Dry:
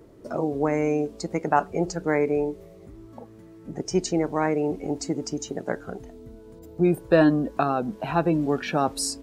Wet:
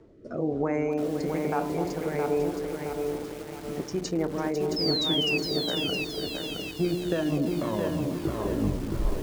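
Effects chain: tape stop on the ending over 1.90 s; de-hum 59.22 Hz, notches 18; peak limiter -17 dBFS, peak gain reduction 11 dB; rotary cabinet horn 1.1 Hz, later 5.5 Hz, at 3.28 s; painted sound fall, 4.76–5.38 s, 2.5–5.3 kHz -26 dBFS; distance through air 84 m; echo whose repeats swap between lows and highs 249 ms, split 1.1 kHz, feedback 73%, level -8 dB; bit-crushed delay 668 ms, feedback 55%, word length 7-bit, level -4 dB

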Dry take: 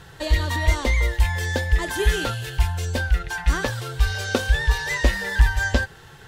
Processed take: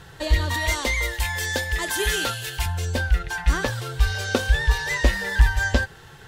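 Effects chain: 0.54–2.66 s: tilt EQ +2 dB/octave

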